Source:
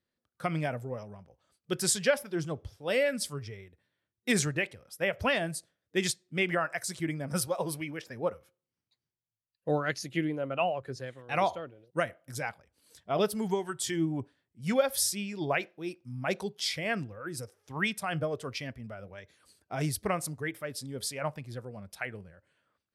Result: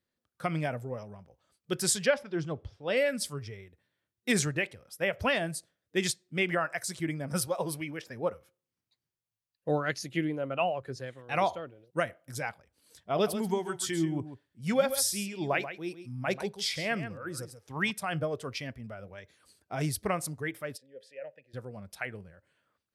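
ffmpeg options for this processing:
ffmpeg -i in.wav -filter_complex "[0:a]asettb=1/sr,asplit=3[link_01][link_02][link_03];[link_01]atrim=end=2.064[link_04];[link_02]atrim=start=2.06:end=2.97,asetpts=PTS-STARTPTS,afade=type=in:duration=0.004:curve=qsin,afade=type=out:start_time=0.906:duration=0.004:curve=qsin,lowpass=4500[link_05];[link_03]atrim=start=2.966[link_06];[link_04][link_05]acrossfade=duration=0.004:curve1=hsin:curve2=qsin[link_07];[link_07][link_06]acrossfade=duration=0.004:curve1=qsin:curve2=hsin,asettb=1/sr,asplit=3[link_08][link_09][link_10];[link_08]atrim=end=13.134[link_11];[link_09]atrim=start=13.13:end=17.91,asetpts=PTS-STARTPTS,afade=type=in:duration=0.004:curve=qsin,afade=type=out:start_time=4.776:duration=0.004:curve=qsin,aecho=1:1:136:0.282,atrim=end_sample=210798[link_12];[link_10]atrim=start=17.906[link_13];[link_11][link_12]acrossfade=duration=0.004:curve1=hsin:curve2=qsin[link_14];[link_14][link_13]acrossfade=duration=0.004:curve1=qsin:curve2=hsin,asplit=3[link_15][link_16][link_17];[link_15]afade=type=out:start_time=20.76:duration=0.02[link_18];[link_16]asplit=3[link_19][link_20][link_21];[link_19]bandpass=frequency=530:width_type=q:width=8,volume=0dB[link_22];[link_20]bandpass=frequency=1840:width_type=q:width=8,volume=-6dB[link_23];[link_21]bandpass=frequency=2480:width_type=q:width=8,volume=-9dB[link_24];[link_22][link_23][link_24]amix=inputs=3:normalize=0,afade=type=in:start_time=20.76:duration=0.02,afade=type=out:start_time=21.53:duration=0.02[link_25];[link_17]afade=type=in:start_time=21.53:duration=0.02[link_26];[link_18][link_25][link_26]amix=inputs=3:normalize=0" out.wav

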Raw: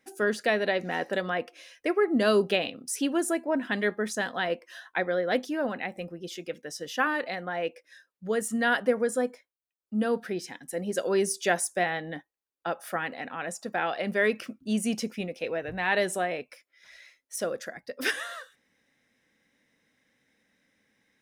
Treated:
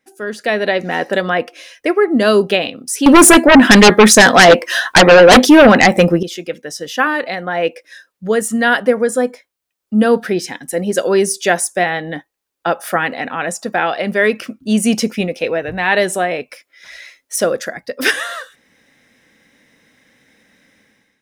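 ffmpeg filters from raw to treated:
ffmpeg -i in.wav -filter_complex "[0:a]asettb=1/sr,asplit=3[link_01][link_02][link_03];[link_01]atrim=end=3.064[link_04];[link_02]atrim=start=3.06:end=6.23,asetpts=PTS-STARTPTS,afade=type=in:duration=0.004:curve=qsin,afade=type=out:start_time=3.166:duration=0.004:curve=qsin,aeval=exprs='0.211*sin(PI/2*3.98*val(0)/0.211)':channel_layout=same[link_05];[link_03]atrim=start=6.226[link_06];[link_04][link_05]acrossfade=duration=0.004:curve1=hsin:curve2=qsin[link_07];[link_07][link_06]acrossfade=duration=0.004:curve1=qsin:curve2=hsin,dynaudnorm=framelen=130:gausssize=7:maxgain=16.5dB" out.wav

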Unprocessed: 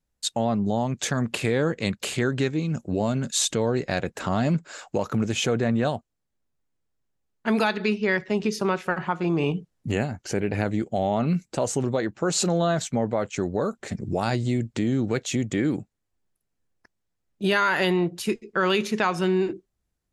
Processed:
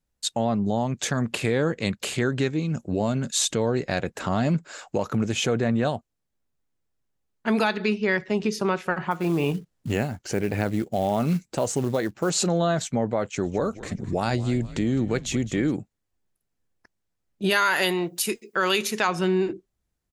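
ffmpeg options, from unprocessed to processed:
ffmpeg -i in.wav -filter_complex "[0:a]asettb=1/sr,asplit=3[link_01][link_02][link_03];[link_01]atrim=end=9.114[link_04];[link_02]atrim=start=9.11:end=12.3,asetpts=PTS-STARTPTS,afade=type=in:duration=0.004:curve=qsin,afade=type=out:start_time=3.186:duration=0.004:curve=qsin,acrusher=bits=6:mode=log:mix=0:aa=0.000001[link_05];[link_03]atrim=start=12.296[link_06];[link_04][link_05]acrossfade=duration=0.004:curve1=hsin:curve2=qsin[link_07];[link_07][link_06]acrossfade=duration=0.004:curve1=qsin:curve2=hsin,asplit=3[link_08][link_09][link_10];[link_08]afade=type=out:start_time=13.43:duration=0.02[link_11];[link_09]asplit=5[link_12][link_13][link_14][link_15][link_16];[link_13]adelay=210,afreqshift=-90,volume=-16dB[link_17];[link_14]adelay=420,afreqshift=-180,volume=-22.9dB[link_18];[link_15]adelay=630,afreqshift=-270,volume=-29.9dB[link_19];[link_16]adelay=840,afreqshift=-360,volume=-36.8dB[link_20];[link_12][link_17][link_18][link_19][link_20]amix=inputs=5:normalize=0,afade=type=in:start_time=13.43:duration=0.02,afade=type=out:start_time=15.7:duration=0.02[link_21];[link_10]afade=type=in:start_time=15.7:duration=0.02[link_22];[link_11][link_21][link_22]amix=inputs=3:normalize=0,asplit=3[link_23][link_24][link_25];[link_23]afade=type=out:start_time=17.49:duration=0.02[link_26];[link_24]aemphasis=mode=production:type=bsi,afade=type=in:start_time=17.49:duration=0.02,afade=type=out:start_time=19.07:duration=0.02[link_27];[link_25]afade=type=in:start_time=19.07:duration=0.02[link_28];[link_26][link_27][link_28]amix=inputs=3:normalize=0" out.wav

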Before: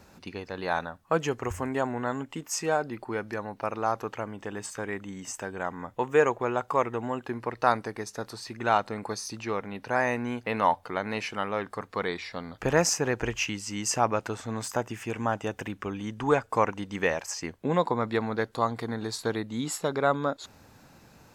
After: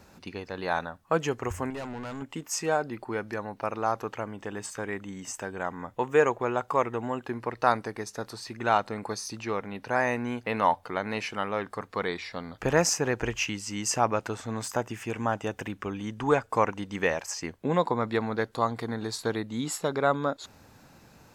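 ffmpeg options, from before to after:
ffmpeg -i in.wav -filter_complex "[0:a]asettb=1/sr,asplit=3[link_01][link_02][link_03];[link_01]atrim=end=1.704[link_04];[link_02]atrim=start=1.7:end=2.22,asetpts=PTS-STARTPTS,afade=type=in:duration=0.004:curve=qsin,afade=type=out:start_time=0.516:duration=0.004:curve=qsin,aeval=exprs='(tanh(44.7*val(0)+0.3)-tanh(0.3))/44.7':channel_layout=same[link_05];[link_03]atrim=start=2.216[link_06];[link_04][link_05]acrossfade=duration=0.004:curve1=hsin:curve2=qsin[link_07];[link_07][link_06]acrossfade=duration=0.004:curve1=qsin:curve2=hsin" out.wav

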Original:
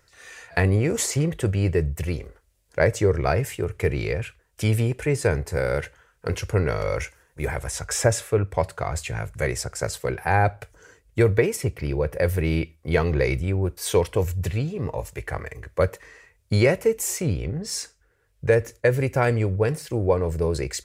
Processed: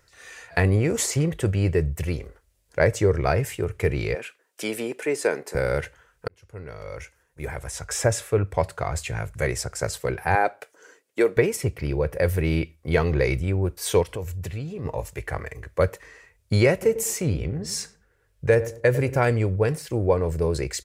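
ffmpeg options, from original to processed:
ffmpeg -i in.wav -filter_complex "[0:a]asettb=1/sr,asplit=3[link_01][link_02][link_03];[link_01]atrim=end=4.154[link_04];[link_02]atrim=start=4.15:end=5.55,asetpts=PTS-STARTPTS,afade=type=in:duration=0.004:curve=qsin,afade=type=out:start_time=1.396:duration=0.004:curve=qsin,highpass=frequency=250:width=0.5412,highpass=frequency=250:width=1.3066[link_05];[link_03]atrim=start=5.546[link_06];[link_04][link_05]acrossfade=duration=0.004:curve1=hsin:curve2=qsin[link_07];[link_07][link_06]acrossfade=duration=0.004:curve1=qsin:curve2=hsin,asettb=1/sr,asplit=3[link_08][link_09][link_10];[link_08]atrim=end=10.354[link_11];[link_09]atrim=start=10.35:end=11.37,asetpts=PTS-STARTPTS,afade=type=in:duration=0.004:curve=qsin,afade=type=out:start_time=1.016:duration=0.004:curve=qsin,highpass=frequency=260:width=0.5412,highpass=frequency=260:width=1.3066[link_12];[link_10]atrim=start=11.366[link_13];[link_11][link_12]acrossfade=duration=0.004:curve1=hsin:curve2=qsin[link_14];[link_14][link_13]acrossfade=duration=0.004:curve1=qsin:curve2=hsin,asplit=3[link_15][link_16][link_17];[link_15]afade=type=out:start_time=14.02:duration=0.02[link_18];[link_16]acompressor=threshold=-31dB:ratio=2.5:attack=3.2:release=140:knee=1:detection=peak,afade=type=in:start_time=14.02:duration=0.02,afade=type=out:start_time=14.84:duration=0.02[link_19];[link_17]afade=type=in:start_time=14.84:duration=0.02[link_20];[link_18][link_19][link_20]amix=inputs=3:normalize=0,asplit=3[link_21][link_22][link_23];[link_21]afade=type=out:start_time=16.81:duration=0.02[link_24];[link_22]asplit=2[link_25][link_26];[link_26]adelay=100,lowpass=frequency=860:poles=1,volume=-11.5dB,asplit=2[link_27][link_28];[link_28]adelay=100,lowpass=frequency=860:poles=1,volume=0.35,asplit=2[link_29][link_30];[link_30]adelay=100,lowpass=frequency=860:poles=1,volume=0.35,asplit=2[link_31][link_32];[link_32]adelay=100,lowpass=frequency=860:poles=1,volume=0.35[link_33];[link_25][link_27][link_29][link_31][link_33]amix=inputs=5:normalize=0,afade=type=in:start_time=16.81:duration=0.02,afade=type=out:start_time=19.21:duration=0.02[link_34];[link_23]afade=type=in:start_time=19.21:duration=0.02[link_35];[link_24][link_34][link_35]amix=inputs=3:normalize=0,asplit=2[link_36][link_37];[link_36]atrim=end=6.28,asetpts=PTS-STARTPTS,afade=type=out:start_time=6.276:duration=0.004:curve=hsin[link_38];[link_37]atrim=start=6.28,asetpts=PTS-STARTPTS,afade=type=in:duration=2.17[link_39];[link_38][link_39]concat=n=2:v=0:a=1" out.wav

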